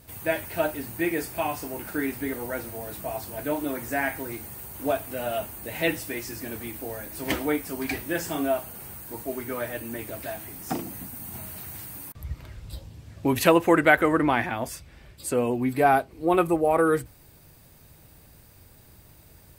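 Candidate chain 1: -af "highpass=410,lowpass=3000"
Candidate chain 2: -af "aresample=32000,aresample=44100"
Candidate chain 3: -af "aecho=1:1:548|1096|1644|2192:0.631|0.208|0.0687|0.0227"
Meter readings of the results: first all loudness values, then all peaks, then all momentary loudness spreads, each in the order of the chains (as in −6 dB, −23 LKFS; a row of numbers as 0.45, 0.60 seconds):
−28.5, −27.0, −26.0 LKFS; −4.0, −3.0, −3.0 dBFS; 18, 17, 15 LU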